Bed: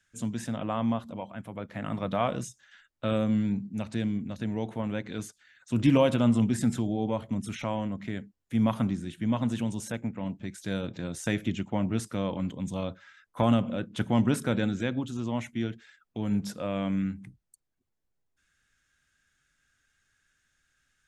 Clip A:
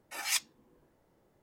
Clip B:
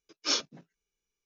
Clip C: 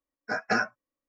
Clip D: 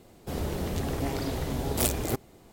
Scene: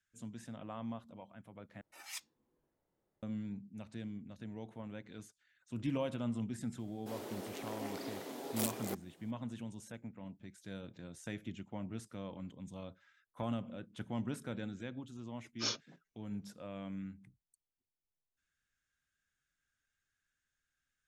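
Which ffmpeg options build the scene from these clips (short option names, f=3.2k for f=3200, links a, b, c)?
-filter_complex "[0:a]volume=-14.5dB[a];[4:a]highpass=f=260:w=0.5412,highpass=f=260:w=1.3066[b];[a]asplit=2[c][d];[c]atrim=end=1.814[e];[1:a]atrim=end=1.42,asetpts=PTS-STARTPTS,volume=-15dB[f];[d]atrim=start=3.226[g];[b]atrim=end=2.52,asetpts=PTS-STARTPTS,volume=-10dB,afade=t=in:d=0.004:c=hsin,afade=t=out:st=2.516:d=0.004:c=hsin,adelay=6790[h];[2:a]atrim=end=1.25,asetpts=PTS-STARTPTS,volume=-8.5dB,afade=t=in:d=0.004:c=hsin,afade=t=out:st=1.246:d=0.004:c=hsin,adelay=15350[i];[e][f]acrossfade=d=0.004:c1=hsin:c2=hsin[j];[j][g]acrossfade=d=0.004:c1=hsin:c2=hsin[k];[k][h][i]amix=inputs=3:normalize=0"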